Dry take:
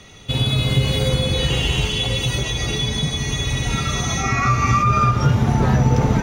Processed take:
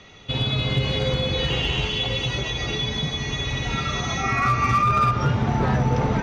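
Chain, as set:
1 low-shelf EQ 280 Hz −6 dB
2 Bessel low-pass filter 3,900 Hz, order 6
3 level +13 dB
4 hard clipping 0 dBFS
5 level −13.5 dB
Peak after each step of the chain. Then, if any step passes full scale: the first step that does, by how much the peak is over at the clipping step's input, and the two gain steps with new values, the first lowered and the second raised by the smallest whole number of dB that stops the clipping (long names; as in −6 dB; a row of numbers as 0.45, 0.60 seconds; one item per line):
−7.0, −7.0, +6.0, 0.0, −13.5 dBFS
step 3, 6.0 dB
step 3 +7 dB, step 5 −7.5 dB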